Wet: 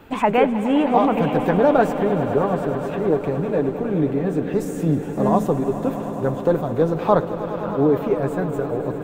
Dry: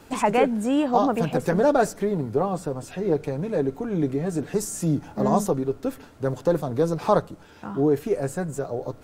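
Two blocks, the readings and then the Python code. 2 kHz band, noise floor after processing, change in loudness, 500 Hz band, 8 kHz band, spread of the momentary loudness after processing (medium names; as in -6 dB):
+4.0 dB, -29 dBFS, +4.0 dB, +4.0 dB, -9.5 dB, 7 LU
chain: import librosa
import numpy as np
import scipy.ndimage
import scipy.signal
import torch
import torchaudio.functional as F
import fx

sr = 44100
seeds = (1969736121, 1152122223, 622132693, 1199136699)

y = fx.band_shelf(x, sr, hz=7400.0, db=-13.5, octaves=1.7)
y = fx.echo_swell(y, sr, ms=104, loudest=5, wet_db=-15.0)
y = F.gain(torch.from_numpy(y), 3.0).numpy()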